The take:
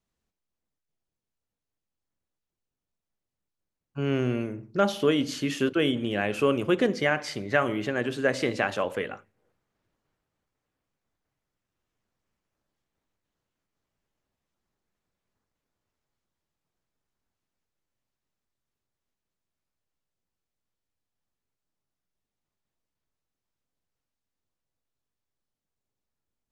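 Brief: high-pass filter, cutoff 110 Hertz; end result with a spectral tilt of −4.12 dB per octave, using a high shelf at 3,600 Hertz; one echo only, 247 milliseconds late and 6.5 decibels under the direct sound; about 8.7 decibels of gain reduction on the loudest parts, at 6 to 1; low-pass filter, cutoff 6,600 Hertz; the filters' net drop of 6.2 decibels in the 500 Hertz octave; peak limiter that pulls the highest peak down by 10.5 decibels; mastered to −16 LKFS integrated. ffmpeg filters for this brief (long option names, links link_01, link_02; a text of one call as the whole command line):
ffmpeg -i in.wav -af "highpass=110,lowpass=6600,equalizer=frequency=500:width_type=o:gain=-8,highshelf=frequency=3600:gain=7,acompressor=threshold=-30dB:ratio=6,alimiter=level_in=3dB:limit=-24dB:level=0:latency=1,volume=-3dB,aecho=1:1:247:0.473,volume=21dB" out.wav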